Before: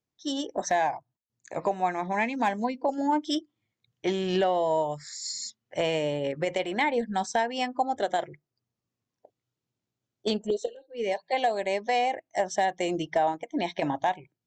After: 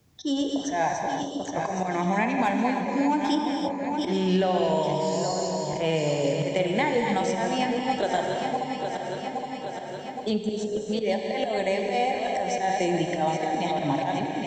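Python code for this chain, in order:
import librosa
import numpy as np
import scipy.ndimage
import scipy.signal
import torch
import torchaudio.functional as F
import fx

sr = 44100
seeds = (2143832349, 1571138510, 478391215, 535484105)

y = fx.reverse_delay_fb(x, sr, ms=409, feedback_pct=61, wet_db=-8.0)
y = fx.peak_eq(y, sr, hz=83.0, db=10.5, octaves=2.4)
y = fx.auto_swell(y, sr, attack_ms=119.0)
y = fx.rev_gated(y, sr, seeds[0], gate_ms=350, shape='flat', drr_db=3.5)
y = fx.band_squash(y, sr, depth_pct=70)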